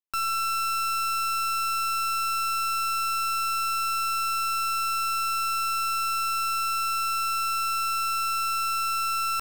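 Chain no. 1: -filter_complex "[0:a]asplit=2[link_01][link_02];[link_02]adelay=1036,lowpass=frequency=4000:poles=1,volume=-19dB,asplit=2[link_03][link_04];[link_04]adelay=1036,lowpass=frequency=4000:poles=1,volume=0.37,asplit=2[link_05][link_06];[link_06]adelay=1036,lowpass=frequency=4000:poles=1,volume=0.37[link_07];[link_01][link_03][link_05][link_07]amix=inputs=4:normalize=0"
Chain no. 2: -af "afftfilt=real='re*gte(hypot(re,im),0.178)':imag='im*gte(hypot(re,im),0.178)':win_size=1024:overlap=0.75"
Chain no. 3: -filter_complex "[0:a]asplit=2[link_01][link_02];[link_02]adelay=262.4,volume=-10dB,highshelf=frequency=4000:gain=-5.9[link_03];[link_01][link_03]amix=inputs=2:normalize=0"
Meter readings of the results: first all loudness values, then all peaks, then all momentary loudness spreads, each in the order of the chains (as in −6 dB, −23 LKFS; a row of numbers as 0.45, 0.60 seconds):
−25.5, −27.5, −26.5 LKFS; −25.5, −24.5, −24.5 dBFS; 0, 0, 0 LU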